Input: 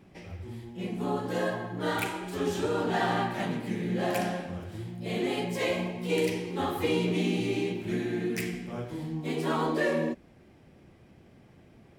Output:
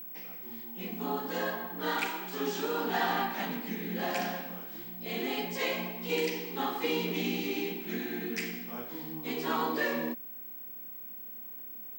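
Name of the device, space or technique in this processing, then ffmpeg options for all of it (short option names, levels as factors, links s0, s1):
old television with a line whistle: -af "highpass=f=220:w=0.5412,highpass=f=220:w=1.3066,equalizer=f=350:t=q:w=4:g=-8,equalizer=f=580:t=q:w=4:g=-8,equalizer=f=4900:t=q:w=4:g=3,lowpass=f=7800:w=0.5412,lowpass=f=7800:w=1.3066,aeval=exprs='val(0)+0.00891*sin(2*PI*15734*n/s)':c=same"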